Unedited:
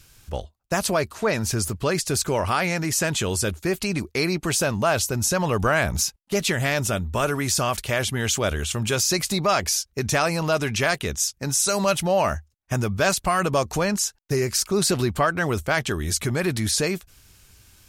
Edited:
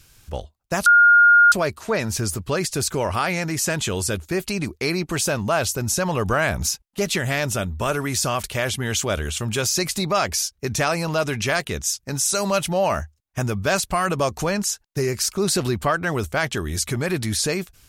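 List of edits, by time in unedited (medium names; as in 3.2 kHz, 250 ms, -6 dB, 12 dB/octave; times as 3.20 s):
0.86 s: add tone 1.42 kHz -9 dBFS 0.66 s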